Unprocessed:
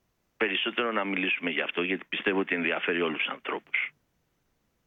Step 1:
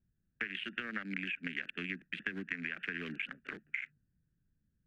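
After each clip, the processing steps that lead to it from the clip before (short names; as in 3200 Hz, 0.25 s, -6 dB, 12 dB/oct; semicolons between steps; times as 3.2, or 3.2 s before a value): Wiener smoothing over 41 samples; EQ curve 180 Hz 0 dB, 410 Hz -15 dB, 970 Hz -23 dB, 1600 Hz +4 dB, 2800 Hz -6 dB; compressor, threshold -33 dBFS, peak gain reduction 8.5 dB; gain -1 dB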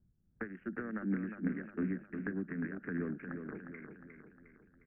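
tremolo 2.7 Hz, depth 37%; Bessel low-pass 830 Hz, order 8; feedback echo 0.357 s, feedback 49%, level -7 dB; gain +8.5 dB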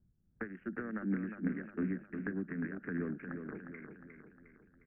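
nothing audible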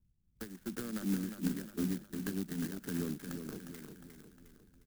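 low shelf 120 Hz +10 dB; AGC gain up to 7 dB; clock jitter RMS 0.11 ms; gain -8.5 dB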